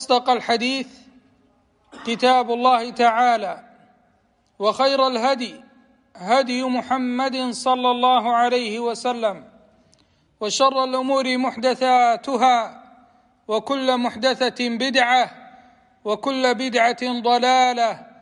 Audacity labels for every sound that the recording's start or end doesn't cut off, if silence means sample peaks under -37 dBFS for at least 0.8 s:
1.930000	3.600000	sound